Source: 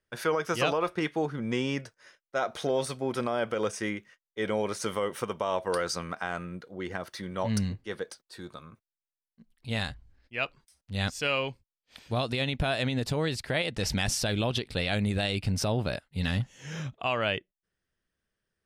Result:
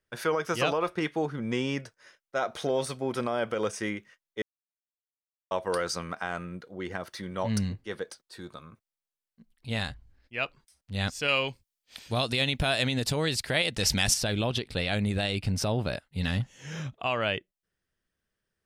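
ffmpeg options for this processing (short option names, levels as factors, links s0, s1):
-filter_complex "[0:a]asettb=1/sr,asplit=3[s0][s1][s2];[s0]atrim=end=11.284[s3];[s1]atrim=start=11.28:end=14.14,asetpts=PTS-STARTPTS,afade=t=in:d=0.004:c=qsin,afade=t=out:st=2.856:d=0.004:c=qsin,highshelf=f=2800:g=9[s4];[s2]atrim=start=14.136[s5];[s3][s4]acrossfade=d=0.004:c1=hsin:c2=qsin[s6];[s6][s5]acrossfade=d=0.004:c1=qsin:c2=hsin,asplit=3[s7][s8][s9];[s7]atrim=end=4.42,asetpts=PTS-STARTPTS,afade=t=out:st=4.416:d=0.004:c=hsin[s10];[s8]atrim=start=4.42:end=5.51,asetpts=PTS-STARTPTS,volume=0[s11];[s9]atrim=start=5.51,asetpts=PTS-STARTPTS,afade=t=in:d=0.004:c=hsin[s12];[s10][s11][s12]concat=n=3:v=0:a=1"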